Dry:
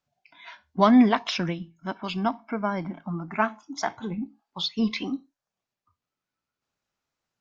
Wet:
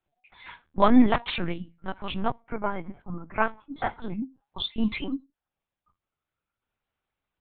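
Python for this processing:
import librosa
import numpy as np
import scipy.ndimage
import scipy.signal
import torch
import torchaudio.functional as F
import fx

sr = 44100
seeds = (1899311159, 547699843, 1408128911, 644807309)

y = fx.lpc_vocoder(x, sr, seeds[0], excitation='pitch_kept', order=10)
y = fx.upward_expand(y, sr, threshold_db=-39.0, expansion=1.5, at=(2.32, 3.36))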